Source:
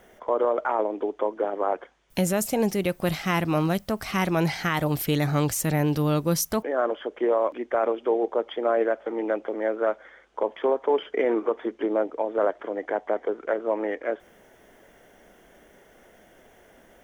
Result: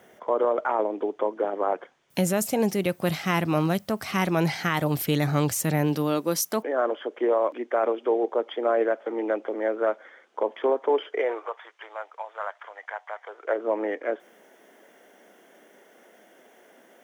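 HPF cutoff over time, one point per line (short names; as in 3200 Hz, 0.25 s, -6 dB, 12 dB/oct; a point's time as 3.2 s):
HPF 24 dB/oct
5.64 s 93 Hz
6.18 s 220 Hz
10.85 s 220 Hz
11.65 s 880 Hz
13.24 s 880 Hz
13.65 s 220 Hz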